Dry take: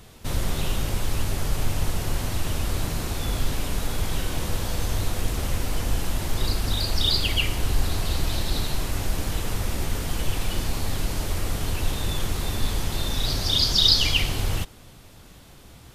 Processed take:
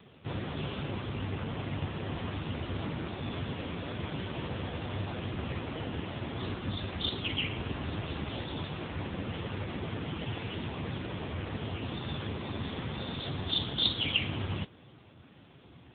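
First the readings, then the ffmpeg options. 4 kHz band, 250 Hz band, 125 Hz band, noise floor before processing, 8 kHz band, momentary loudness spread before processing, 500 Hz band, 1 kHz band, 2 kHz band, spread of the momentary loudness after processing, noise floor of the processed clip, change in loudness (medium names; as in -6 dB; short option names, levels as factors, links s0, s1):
-10.0 dB, -3.0 dB, -7.5 dB, -47 dBFS, under -40 dB, 8 LU, -5.0 dB, -6.5 dB, -6.5 dB, 7 LU, -56 dBFS, -9.5 dB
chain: -af "volume=0.891" -ar 8000 -c:a libopencore_amrnb -b:a 5900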